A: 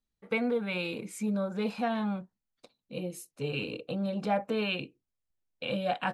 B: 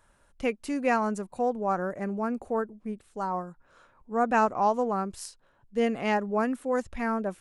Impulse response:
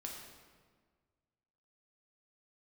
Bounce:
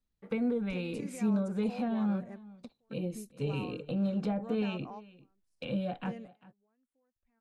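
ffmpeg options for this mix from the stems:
-filter_complex "[0:a]highshelf=f=7400:g=-6,acrossover=split=420[s0][s1];[s1]acompressor=threshold=0.00891:ratio=5[s2];[s0][s2]amix=inputs=2:normalize=0,volume=0.891,asplit=3[s3][s4][s5];[s4]volume=0.0944[s6];[1:a]acompressor=threshold=0.0126:ratio=2.5,alimiter=level_in=2.11:limit=0.0631:level=0:latency=1:release=100,volume=0.473,adelay=300,volume=0.398[s7];[s5]apad=whole_len=339998[s8];[s7][s8]sidechaingate=range=0.0224:threshold=0.00141:ratio=16:detection=peak[s9];[s6]aecho=0:1:395:1[s10];[s3][s9][s10]amix=inputs=3:normalize=0,lowshelf=f=280:g=5"

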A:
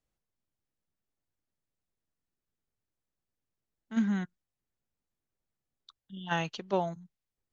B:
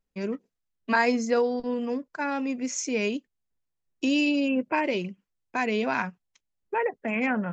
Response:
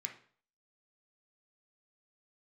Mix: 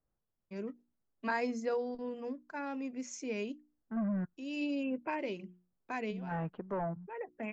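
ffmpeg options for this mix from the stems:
-filter_complex "[0:a]asoftclip=type=hard:threshold=0.0237,lowpass=f=1600:w=0.5412,lowpass=f=1600:w=1.3066,volume=1.19,asplit=2[s0][s1];[1:a]bandreject=f=60:t=h:w=6,bandreject=f=120:t=h:w=6,bandreject=f=180:t=h:w=6,bandreject=f=240:t=h:w=6,bandreject=f=300:t=h:w=6,bandreject=f=360:t=h:w=6,adelay=350,volume=0.335[s2];[s1]apad=whole_len=347407[s3];[s2][s3]sidechaincompress=threshold=0.002:ratio=6:attack=31:release=283[s4];[s0][s4]amix=inputs=2:normalize=0,lowpass=f=1300:p=1,crystalizer=i=2.5:c=0"

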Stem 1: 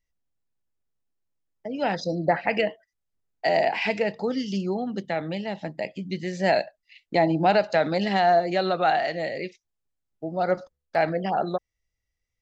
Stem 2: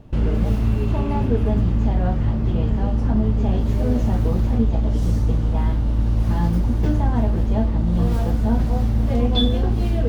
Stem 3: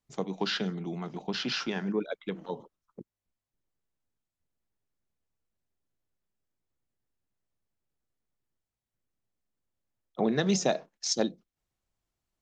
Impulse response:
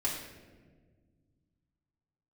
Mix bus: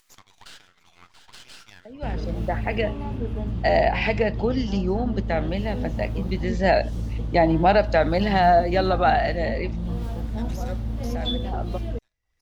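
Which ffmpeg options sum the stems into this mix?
-filter_complex "[0:a]highshelf=f=6100:g=-10,adelay=200,volume=1.33[s0];[1:a]equalizer=f=3400:t=o:w=0.77:g=3.5,adelay=1900,volume=0.335[s1];[2:a]highpass=f=1200:w=0.5412,highpass=f=1200:w=1.3066,alimiter=level_in=1.06:limit=0.0631:level=0:latency=1:release=104,volume=0.944,aeval=exprs='max(val(0),0)':c=same,volume=0.473,asplit=3[s2][s3][s4];[s3]volume=0.119[s5];[s4]apad=whole_len=556268[s6];[s0][s6]sidechaincompress=threshold=0.00158:ratio=8:attack=24:release=1020[s7];[s5]aecho=0:1:682|1364|2046|2728|3410|4092:1|0.4|0.16|0.064|0.0256|0.0102[s8];[s7][s1][s2][s8]amix=inputs=4:normalize=0,acompressor=mode=upward:threshold=0.0112:ratio=2.5"

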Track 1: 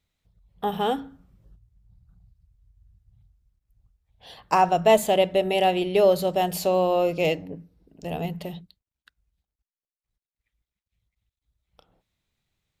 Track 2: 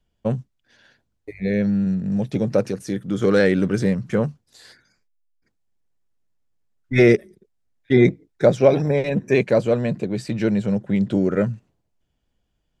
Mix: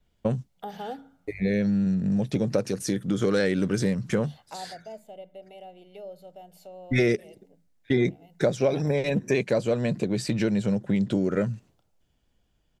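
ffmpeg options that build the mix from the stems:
-filter_complex "[0:a]highpass=260,aecho=1:1:1.4:0.54,acrossover=split=500[s0][s1];[s1]acompressor=threshold=0.0178:ratio=4[s2];[s0][s2]amix=inputs=2:normalize=0,volume=0.531,afade=t=out:st=4.12:d=0.73:silence=0.237137[s3];[1:a]adynamicequalizer=threshold=0.0112:dfrequency=3100:dqfactor=0.7:tfrequency=3100:tqfactor=0.7:attack=5:release=100:ratio=0.375:range=3.5:mode=boostabove:tftype=highshelf,volume=1.33[s4];[s3][s4]amix=inputs=2:normalize=0,acompressor=threshold=0.0708:ratio=3"

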